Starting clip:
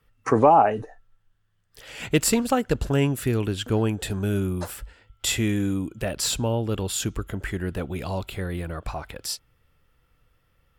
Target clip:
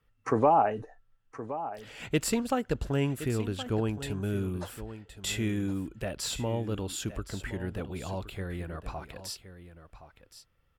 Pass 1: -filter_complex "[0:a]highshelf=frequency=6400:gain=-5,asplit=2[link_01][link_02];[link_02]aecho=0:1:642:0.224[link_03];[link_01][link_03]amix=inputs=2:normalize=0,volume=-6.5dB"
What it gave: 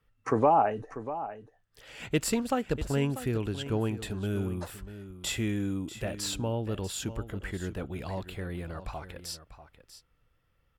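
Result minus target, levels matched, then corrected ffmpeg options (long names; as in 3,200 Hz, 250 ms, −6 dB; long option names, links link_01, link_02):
echo 427 ms early
-filter_complex "[0:a]highshelf=frequency=6400:gain=-5,asplit=2[link_01][link_02];[link_02]aecho=0:1:1069:0.224[link_03];[link_01][link_03]amix=inputs=2:normalize=0,volume=-6.5dB"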